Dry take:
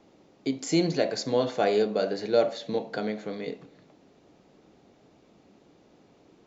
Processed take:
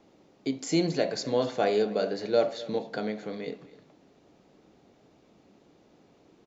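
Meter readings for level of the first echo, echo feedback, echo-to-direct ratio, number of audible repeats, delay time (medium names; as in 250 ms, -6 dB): -19.0 dB, no regular repeats, -19.0 dB, 1, 253 ms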